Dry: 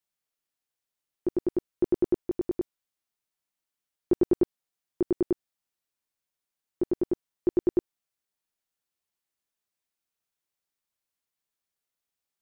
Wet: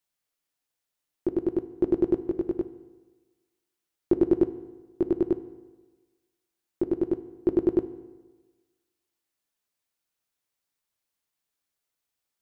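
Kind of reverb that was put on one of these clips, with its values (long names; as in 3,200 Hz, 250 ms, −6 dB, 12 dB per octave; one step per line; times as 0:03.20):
feedback delay network reverb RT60 1.3 s, low-frequency decay 0.95×, high-frequency decay 0.75×, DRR 10.5 dB
level +2.5 dB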